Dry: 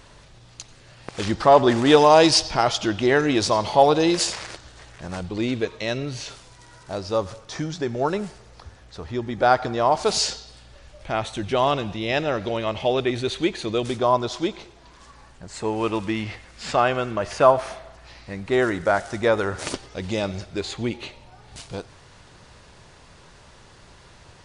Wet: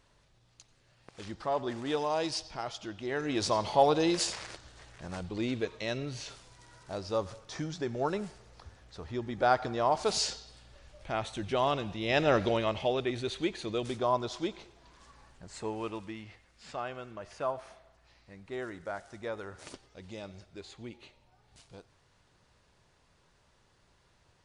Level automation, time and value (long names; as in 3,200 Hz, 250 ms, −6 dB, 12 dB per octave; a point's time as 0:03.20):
0:03.04 −17.5 dB
0:03.47 −8 dB
0:11.97 −8 dB
0:12.35 0 dB
0:12.97 −9 dB
0:15.57 −9 dB
0:16.23 −18 dB